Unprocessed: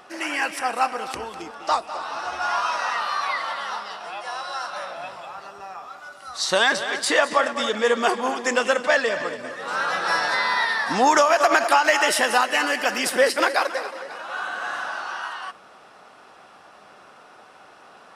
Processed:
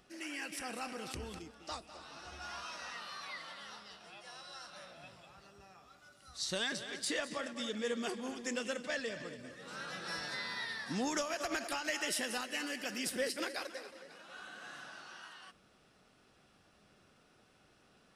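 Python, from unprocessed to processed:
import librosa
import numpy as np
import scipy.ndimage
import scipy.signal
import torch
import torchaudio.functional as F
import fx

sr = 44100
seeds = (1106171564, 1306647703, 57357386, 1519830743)

y = fx.tone_stack(x, sr, knobs='10-0-1')
y = fx.env_flatten(y, sr, amount_pct=50, at=(0.52, 1.39))
y = y * 10.0 ** (8.5 / 20.0)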